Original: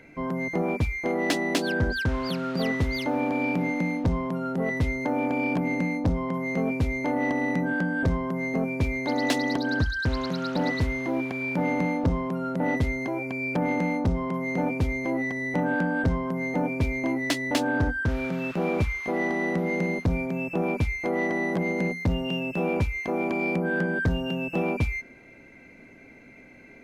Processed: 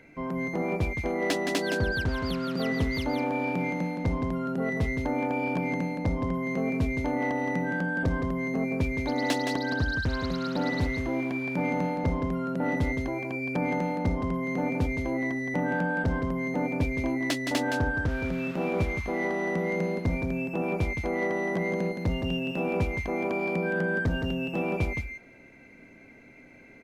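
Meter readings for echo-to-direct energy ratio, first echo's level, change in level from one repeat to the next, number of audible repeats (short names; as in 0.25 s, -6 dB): -6.0 dB, -6.0 dB, no steady repeat, 1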